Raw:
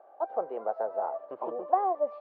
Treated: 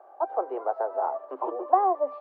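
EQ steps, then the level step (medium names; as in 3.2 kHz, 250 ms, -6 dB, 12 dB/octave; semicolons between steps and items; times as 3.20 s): rippled Chebyshev high-pass 260 Hz, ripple 6 dB; +7.0 dB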